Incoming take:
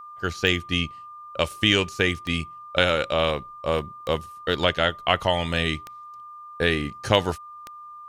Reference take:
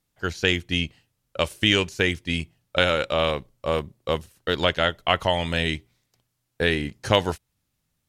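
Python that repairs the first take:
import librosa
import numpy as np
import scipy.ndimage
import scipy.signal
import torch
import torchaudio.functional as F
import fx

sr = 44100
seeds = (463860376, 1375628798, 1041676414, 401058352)

y = fx.fix_declick_ar(x, sr, threshold=10.0)
y = fx.notch(y, sr, hz=1200.0, q=30.0)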